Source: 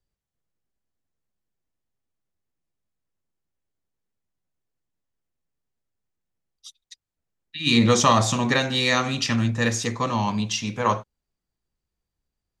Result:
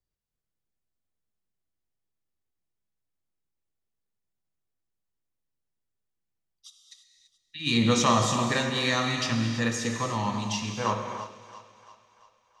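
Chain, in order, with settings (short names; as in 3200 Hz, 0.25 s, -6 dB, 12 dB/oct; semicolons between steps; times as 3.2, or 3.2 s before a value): split-band echo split 570 Hz, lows 0.204 s, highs 0.339 s, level -15 dB; non-linear reverb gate 0.35 s flat, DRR 4 dB; gain -6 dB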